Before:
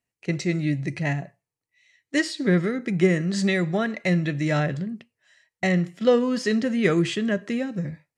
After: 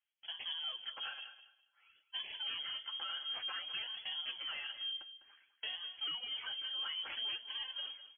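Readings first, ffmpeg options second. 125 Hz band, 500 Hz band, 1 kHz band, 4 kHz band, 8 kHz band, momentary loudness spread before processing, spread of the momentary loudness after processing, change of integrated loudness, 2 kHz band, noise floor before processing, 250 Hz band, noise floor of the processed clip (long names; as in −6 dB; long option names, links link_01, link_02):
below −40 dB, −39.5 dB, −16.5 dB, +1.5 dB, below −40 dB, 9 LU, 7 LU, −15.5 dB, −17.5 dB, below −85 dBFS, below −40 dB, −78 dBFS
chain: -filter_complex "[0:a]lowshelf=frequency=190:gain=-6,bandreject=frequency=60:width_type=h:width=6,bandreject=frequency=120:width_type=h:width=6,bandreject=frequency=180:width_type=h:width=6,bandreject=frequency=240:width_type=h:width=6,aecho=1:1:3.9:0.94,acompressor=threshold=-28dB:ratio=6,acrusher=samples=12:mix=1:aa=0.000001:lfo=1:lforange=19.2:lforate=0.56,asoftclip=type=tanh:threshold=-25.5dB,flanger=delay=4.6:depth=7.9:regen=-33:speed=0.82:shape=sinusoidal,lowpass=frequency=2900:width_type=q:width=0.5098,lowpass=frequency=2900:width_type=q:width=0.6013,lowpass=frequency=2900:width_type=q:width=0.9,lowpass=frequency=2900:width_type=q:width=2.563,afreqshift=-3400,asplit=2[link_01][link_02];[link_02]aecho=0:1:203|406|609:0.224|0.0493|0.0108[link_03];[link_01][link_03]amix=inputs=2:normalize=0,volume=-5.5dB"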